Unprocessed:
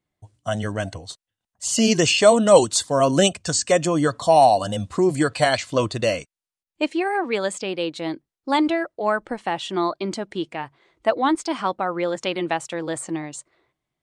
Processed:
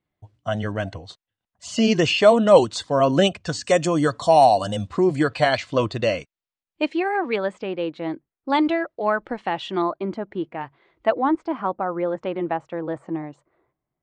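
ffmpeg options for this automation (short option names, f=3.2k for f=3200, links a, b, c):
-af "asetnsamples=n=441:p=0,asendcmd='3.64 lowpass f 7700;4.87 lowpass f 4100;7.36 lowpass f 2000;8.5 lowpass f 3800;9.82 lowpass f 1600;10.61 lowpass f 3100;11.12 lowpass f 1300',lowpass=3.6k"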